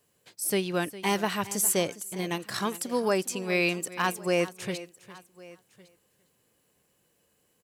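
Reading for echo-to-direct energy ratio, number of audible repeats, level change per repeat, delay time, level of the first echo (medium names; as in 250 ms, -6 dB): -15.0 dB, 2, no regular repeats, 407 ms, -16.0 dB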